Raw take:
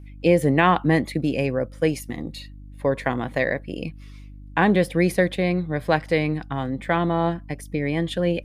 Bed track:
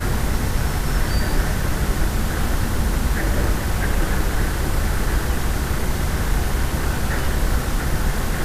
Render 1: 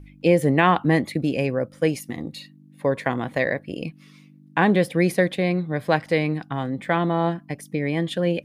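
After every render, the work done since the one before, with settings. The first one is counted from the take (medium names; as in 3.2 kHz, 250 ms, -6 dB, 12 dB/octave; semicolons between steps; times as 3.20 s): de-hum 50 Hz, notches 2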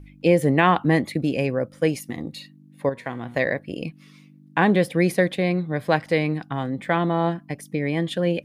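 2.89–3.35 s: feedback comb 120 Hz, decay 0.82 s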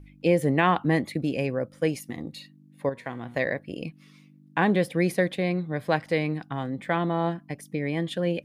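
trim -4 dB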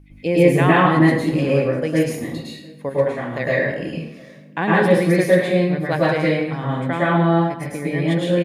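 echo from a far wall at 120 m, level -25 dB; plate-style reverb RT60 0.77 s, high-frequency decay 0.75×, pre-delay 95 ms, DRR -7 dB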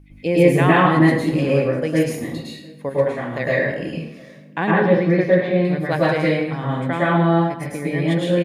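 4.71–5.65 s: distance through air 270 m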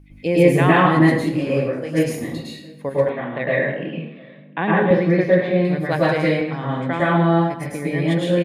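1.28–1.96 s: detune thickener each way 46 cents -> 56 cents; 3.09–4.91 s: Chebyshev band-pass 130–3700 Hz, order 5; 6.41–7.00 s: band-pass 120–6300 Hz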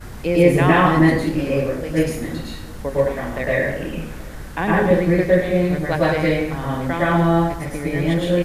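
add bed track -14 dB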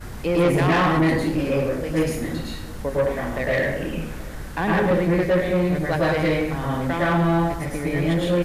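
saturation -14 dBFS, distortion -12 dB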